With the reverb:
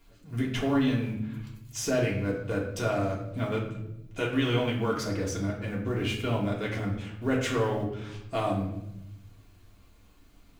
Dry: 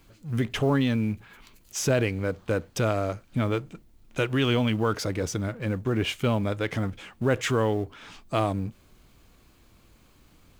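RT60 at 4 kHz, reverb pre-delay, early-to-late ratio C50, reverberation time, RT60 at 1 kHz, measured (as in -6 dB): 0.60 s, 3 ms, 5.5 dB, 0.85 s, 0.70 s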